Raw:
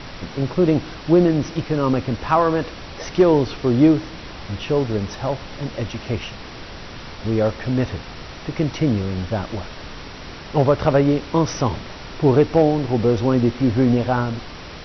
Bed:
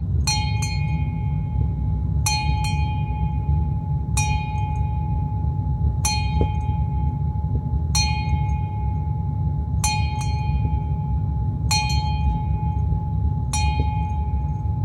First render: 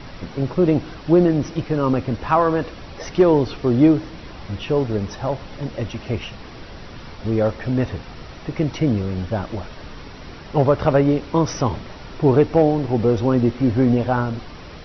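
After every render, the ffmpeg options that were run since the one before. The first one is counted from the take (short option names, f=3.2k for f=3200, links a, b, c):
-af "afftdn=nr=6:nf=-36"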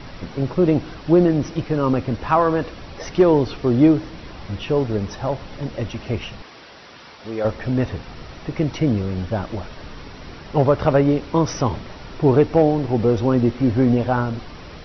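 -filter_complex "[0:a]asettb=1/sr,asplit=3[a][b][c];[a]atrim=end=6.424[d];[b]atrim=start=6.42:end=7.45,asetpts=PTS-STARTPTS,afade=t=in:d=0.004:c=qsin,afade=t=out:st=1.026:d=0.004:c=qsin,highpass=f=640:p=1[e];[c]atrim=start=7.446[f];[d][e]acrossfade=d=0.004:c1=hsin:c2=qsin[g];[g][f]acrossfade=d=0.004:c1=qsin:c2=hsin"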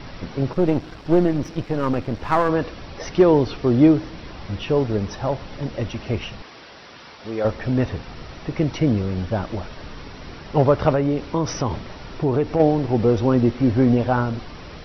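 -filter_complex "[0:a]asettb=1/sr,asplit=3[a][b][c];[a]atrim=end=0.534[d];[b]atrim=start=0.53:end=2.49,asetpts=PTS-STARTPTS,afade=t=in:d=0.004:c=qsin,afade=t=out:st=1.956:d=0.004:c=qsin,aeval=exprs='if(lt(val(0),0),0.447*val(0),val(0))':c=same[e];[c]atrim=start=2.486[f];[d][e]acrossfade=d=0.004:c1=hsin:c2=qsin[g];[g][f]acrossfade=d=0.004:c1=qsin:c2=hsin,asettb=1/sr,asplit=3[h][i][j];[h]atrim=end=10.944[k];[i]atrim=start=10.94:end=12.6,asetpts=PTS-STARTPTS,afade=t=in:d=0.004:c=qsin,afade=t=out:st=1.656:d=0.004:c=qsin,acompressor=threshold=-18dB:ratio=2.5:attack=3.2:release=140:knee=1:detection=peak[l];[j]atrim=start=12.596[m];[k][l]acrossfade=d=0.004:c1=hsin:c2=qsin[n];[n][m]acrossfade=d=0.004:c1=qsin:c2=hsin"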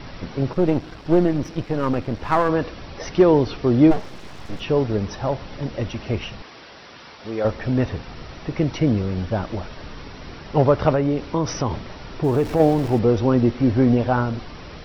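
-filter_complex "[0:a]asplit=3[a][b][c];[a]afade=t=out:st=3.9:d=0.02[d];[b]aeval=exprs='abs(val(0))':c=same,afade=t=in:st=3.9:d=0.02,afade=t=out:st=4.59:d=0.02[e];[c]afade=t=in:st=4.59:d=0.02[f];[d][e][f]amix=inputs=3:normalize=0,asettb=1/sr,asplit=3[g][h][i];[g]atrim=end=12.244[j];[h]atrim=start=12.24:end=12.99,asetpts=PTS-STARTPTS,afade=t=in:d=0.004:c=qsin,afade=t=out:st=0.746:d=0.004:c=qsin,aeval=exprs='val(0)+0.5*0.0251*sgn(val(0))':c=same[k];[i]atrim=start=12.986[l];[j][k]acrossfade=d=0.004:c1=hsin:c2=qsin[m];[m][l]acrossfade=d=0.004:c1=qsin:c2=hsin"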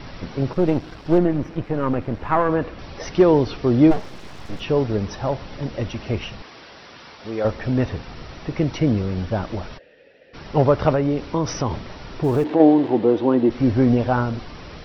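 -filter_complex "[0:a]asettb=1/sr,asplit=3[a][b][c];[a]atrim=end=1.184[d];[b]atrim=start=1.18:end=2.79,asetpts=PTS-STARTPTS,afade=t=in:d=0.004:c=qsin,afade=t=out:st=1.606:d=0.004:c=qsin,acrossover=split=2800[e][f];[f]acompressor=threshold=-57dB:ratio=4:attack=1:release=60[g];[e][g]amix=inputs=2:normalize=0[h];[c]atrim=start=2.786[i];[d][h]acrossfade=d=0.004:c1=hsin:c2=qsin[j];[j][i]acrossfade=d=0.004:c1=qsin:c2=hsin,asplit=3[k][l][m];[k]afade=t=out:st=9.77:d=0.02[n];[l]asplit=3[o][p][q];[o]bandpass=f=530:t=q:w=8,volume=0dB[r];[p]bandpass=f=1.84k:t=q:w=8,volume=-6dB[s];[q]bandpass=f=2.48k:t=q:w=8,volume=-9dB[t];[r][s][t]amix=inputs=3:normalize=0,afade=t=in:st=9.77:d=0.02,afade=t=out:st=10.33:d=0.02[u];[m]afade=t=in:st=10.33:d=0.02[v];[n][u][v]amix=inputs=3:normalize=0,asplit=3[w][x][y];[w]afade=t=out:st=12.43:d=0.02[z];[x]highpass=240,equalizer=f=310:t=q:w=4:g=9,equalizer=f=920:t=q:w=4:g=3,equalizer=f=1.3k:t=q:w=4:g=-5,equalizer=f=2.4k:t=q:w=4:g=-4,lowpass=f=3.9k:w=0.5412,lowpass=f=3.9k:w=1.3066,afade=t=in:st=12.43:d=0.02,afade=t=out:st=13.49:d=0.02[aa];[y]afade=t=in:st=13.49:d=0.02[ab];[z][aa][ab]amix=inputs=3:normalize=0"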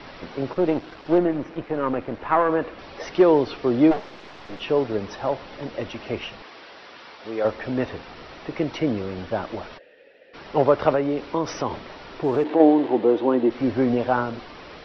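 -filter_complex "[0:a]acrossover=split=260 5400:gain=0.224 1 0.0708[a][b][c];[a][b][c]amix=inputs=3:normalize=0"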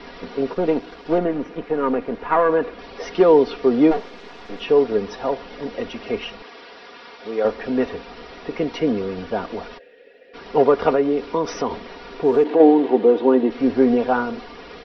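-af "equalizer=f=390:t=o:w=0.24:g=9.5,aecho=1:1:4.2:0.65"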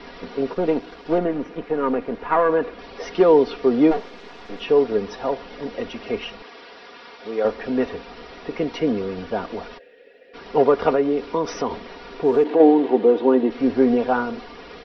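-af "volume=-1dB"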